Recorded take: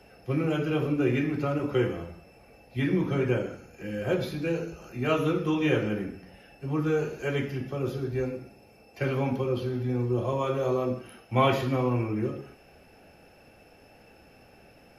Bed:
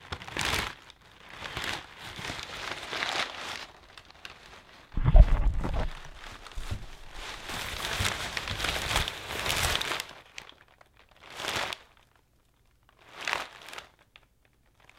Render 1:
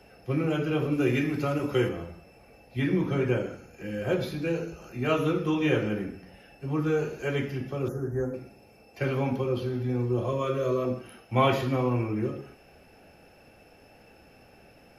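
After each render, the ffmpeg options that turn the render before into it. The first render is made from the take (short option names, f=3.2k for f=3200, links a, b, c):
-filter_complex "[0:a]asettb=1/sr,asplit=3[a][b][c];[a]atrim=end=0.924[d];[b]atrim=start=0.92:end=1.89,asetpts=PTS-STARTPTS,afade=t=in:d=0.004:c=qsin,afade=t=out:st=0.966:d=0.004:c=qsin,highshelf=f=3.9k:g=9.5[e];[c]atrim=start=1.886[f];[d][e]acrossfade=d=0.004:c1=hsin:c2=qsin[g];[g][f]acrossfade=d=0.004:c1=qsin:c2=hsin,asettb=1/sr,asplit=3[h][i][j];[h]atrim=end=7.884[k];[i]atrim=start=7.88:end=8.34,asetpts=PTS-STARTPTS,afade=t=in:d=0.004:c=qsin,afade=t=out:st=0.456:d=0.004:c=qsin,asuperstop=centerf=3300:order=12:qfactor=0.82[l];[j]atrim=start=8.336[m];[k][l]acrossfade=d=0.004:c1=hsin:c2=qsin[n];[n][m]acrossfade=d=0.004:c1=qsin:c2=hsin,asettb=1/sr,asplit=3[o][p][q];[o]atrim=end=10.284[r];[p]atrim=start=10.28:end=10.85,asetpts=PTS-STARTPTS,afade=t=in:d=0.004:c=qsin,afade=t=out:st=0.566:d=0.004:c=qsin,asuperstop=centerf=810:order=8:qfactor=2.6[s];[q]atrim=start=10.846[t];[r][s]acrossfade=d=0.004:c1=hsin:c2=qsin[u];[u][t]acrossfade=d=0.004:c1=qsin:c2=hsin"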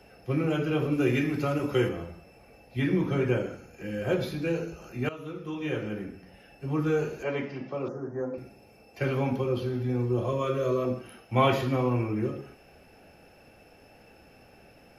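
-filter_complex "[0:a]asettb=1/sr,asplit=3[a][b][c];[a]atrim=end=7.234[d];[b]atrim=start=7.23:end=8.38,asetpts=PTS-STARTPTS,afade=t=in:d=0.004:c=qsin,afade=t=out:st=1.146:d=0.004:c=qsin,highpass=210,equalizer=f=390:t=q:w=4:g=-4,equalizer=f=590:t=q:w=4:g=4,equalizer=f=990:t=q:w=4:g=6,equalizer=f=1.6k:t=q:w=4:g=-5,equalizer=f=3.3k:t=q:w=4:g=-7,lowpass=f=5.1k:w=0.5412,lowpass=f=5.1k:w=1.3066[e];[c]atrim=start=8.376[f];[d][e]acrossfade=d=0.004:c1=hsin:c2=qsin[g];[g][f]acrossfade=d=0.004:c1=qsin:c2=hsin,asplit=2[h][i];[h]atrim=end=5.09,asetpts=PTS-STARTPTS,afade=t=out:st=5.086:d=0.004:c=hsin:silence=0.125893[j];[i]atrim=start=5.09,asetpts=PTS-STARTPTS,afade=t=in:d=1.58:silence=0.125893[k];[j][k]concat=n=2:v=0:a=1"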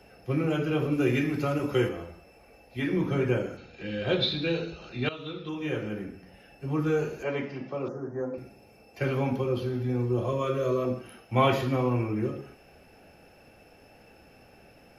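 -filter_complex "[0:a]asettb=1/sr,asplit=3[a][b][c];[a]atrim=end=1.864[d];[b]atrim=start=1.86:end=2.97,asetpts=PTS-STARTPTS,afade=t=in:d=0.004:c=qsin,afade=t=out:st=1.106:d=0.004:c=qsin,equalizer=f=140:t=o:w=1.2:g=-7[e];[c]atrim=start=2.966[f];[d][e]acrossfade=d=0.004:c1=hsin:c2=qsin[g];[g][f]acrossfade=d=0.004:c1=qsin:c2=hsin,asettb=1/sr,asplit=3[h][i][j];[h]atrim=end=3.574[k];[i]atrim=start=3.57:end=5.49,asetpts=PTS-STARTPTS,afade=t=in:d=0.004:c=qsin,afade=t=out:st=1.916:d=0.004:c=qsin,lowpass=f=3.8k:t=q:w=13[l];[j]atrim=start=5.486[m];[k][l]acrossfade=d=0.004:c1=hsin:c2=qsin[n];[n][m]acrossfade=d=0.004:c1=qsin:c2=hsin"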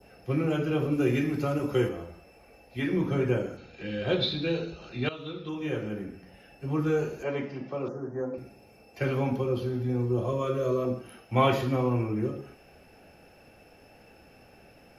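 -af "adynamicequalizer=threshold=0.00398:dfrequency=2300:dqfactor=0.71:tfrequency=2300:tqfactor=0.71:attack=5:release=100:ratio=0.375:range=2:mode=cutabove:tftype=bell"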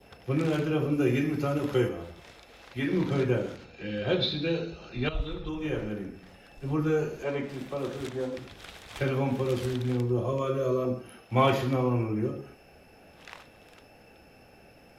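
-filter_complex "[1:a]volume=-16dB[a];[0:a][a]amix=inputs=2:normalize=0"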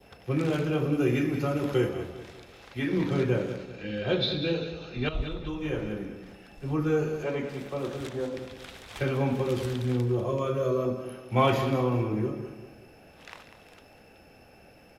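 -af "aecho=1:1:195|390|585|780:0.282|0.116|0.0474|0.0194"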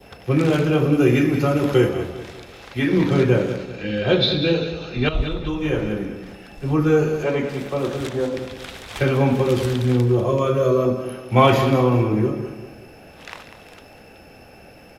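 -af "volume=9dB,alimiter=limit=-3dB:level=0:latency=1"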